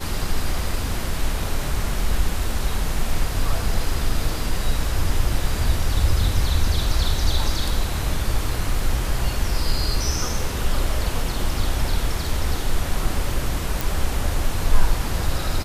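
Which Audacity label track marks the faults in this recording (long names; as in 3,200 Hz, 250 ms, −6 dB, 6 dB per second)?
13.810000	13.810000	click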